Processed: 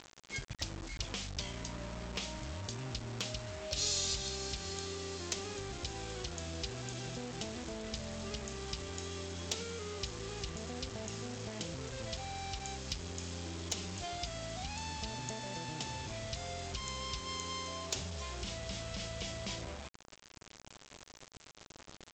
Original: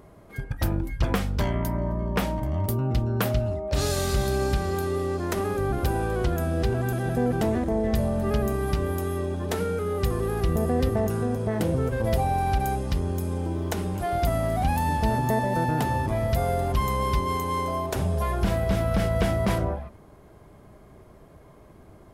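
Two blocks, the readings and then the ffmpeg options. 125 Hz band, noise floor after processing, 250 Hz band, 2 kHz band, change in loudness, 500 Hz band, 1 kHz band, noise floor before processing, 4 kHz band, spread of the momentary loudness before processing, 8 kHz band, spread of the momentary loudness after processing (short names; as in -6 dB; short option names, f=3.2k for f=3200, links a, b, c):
-18.0 dB, -59 dBFS, -18.0 dB, -10.5 dB, -13.5 dB, -17.5 dB, -17.0 dB, -50 dBFS, 0.0 dB, 4 LU, -0.5 dB, 6 LU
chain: -af "acompressor=threshold=-37dB:ratio=8,aexciter=amount=7.3:drive=5.1:freq=2.4k,aresample=16000,acrusher=bits=6:mix=0:aa=0.000001,aresample=44100,asoftclip=type=hard:threshold=-20dB,volume=-3.5dB"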